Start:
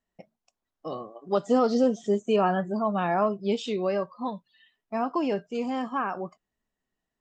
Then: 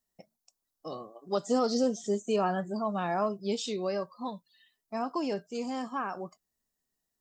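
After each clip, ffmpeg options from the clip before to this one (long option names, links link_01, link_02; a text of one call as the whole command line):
ffmpeg -i in.wav -af "aexciter=amount=3.1:drive=6.9:freq=4100,volume=-5dB" out.wav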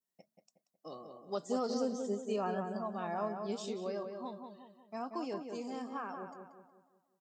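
ffmpeg -i in.wav -filter_complex "[0:a]highpass=130,asplit=2[link_01][link_02];[link_02]adelay=183,lowpass=frequency=2200:poles=1,volume=-5.5dB,asplit=2[link_03][link_04];[link_04]adelay=183,lowpass=frequency=2200:poles=1,volume=0.46,asplit=2[link_05][link_06];[link_06]adelay=183,lowpass=frequency=2200:poles=1,volume=0.46,asplit=2[link_07][link_08];[link_08]adelay=183,lowpass=frequency=2200:poles=1,volume=0.46,asplit=2[link_09][link_10];[link_10]adelay=183,lowpass=frequency=2200:poles=1,volume=0.46,asplit=2[link_11][link_12];[link_12]adelay=183,lowpass=frequency=2200:poles=1,volume=0.46[link_13];[link_03][link_05][link_07][link_09][link_11][link_13]amix=inputs=6:normalize=0[link_14];[link_01][link_14]amix=inputs=2:normalize=0,adynamicequalizer=threshold=0.00447:dfrequency=3400:dqfactor=0.81:tfrequency=3400:tqfactor=0.81:attack=5:release=100:ratio=0.375:range=2:mode=cutabove:tftype=bell,volume=-7.5dB" out.wav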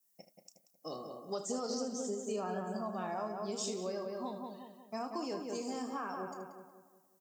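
ffmpeg -i in.wav -filter_complex "[0:a]acompressor=threshold=-40dB:ratio=4,asplit=2[link_01][link_02];[link_02]aecho=0:1:32|77:0.237|0.266[link_03];[link_01][link_03]amix=inputs=2:normalize=0,aexciter=amount=2.2:drive=8.1:freq=5100,volume=4dB" out.wav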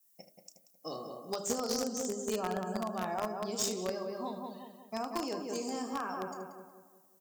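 ffmpeg -i in.wav -filter_complex "[0:a]highshelf=frequency=7700:gain=4.5,bandreject=frequency=50.09:width_type=h:width=4,bandreject=frequency=100.18:width_type=h:width=4,bandreject=frequency=150.27:width_type=h:width=4,bandreject=frequency=200.36:width_type=h:width=4,bandreject=frequency=250.45:width_type=h:width=4,bandreject=frequency=300.54:width_type=h:width=4,bandreject=frequency=350.63:width_type=h:width=4,bandreject=frequency=400.72:width_type=h:width=4,bandreject=frequency=450.81:width_type=h:width=4,bandreject=frequency=500.9:width_type=h:width=4,bandreject=frequency=550.99:width_type=h:width=4,bandreject=frequency=601.08:width_type=h:width=4,bandreject=frequency=651.17:width_type=h:width=4,asplit=2[link_01][link_02];[link_02]acrusher=bits=4:mix=0:aa=0.000001,volume=-6dB[link_03];[link_01][link_03]amix=inputs=2:normalize=0,volume=2.5dB" out.wav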